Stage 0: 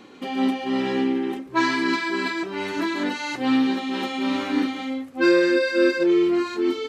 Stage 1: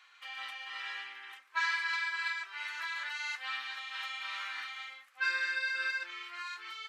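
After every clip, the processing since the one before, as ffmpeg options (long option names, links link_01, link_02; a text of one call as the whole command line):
ffmpeg -i in.wav -af "highpass=frequency=1400:width=0.5412,highpass=frequency=1400:width=1.3066,highshelf=frequency=2200:gain=-11" out.wav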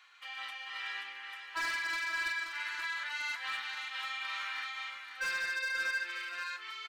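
ffmpeg -i in.wav -af "asoftclip=type=hard:threshold=-31.5dB,aecho=1:1:529:0.422" out.wav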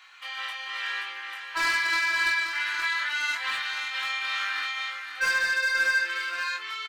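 ffmpeg -i in.wav -filter_complex "[0:a]asplit=2[link_01][link_02];[link_02]adelay=21,volume=-3.5dB[link_03];[link_01][link_03]amix=inputs=2:normalize=0,volume=7.5dB" out.wav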